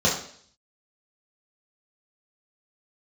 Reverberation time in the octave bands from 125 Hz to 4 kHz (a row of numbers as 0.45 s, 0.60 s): 0.55 s, 0.60 s, 0.60 s, 0.55 s, 0.55 s, 0.65 s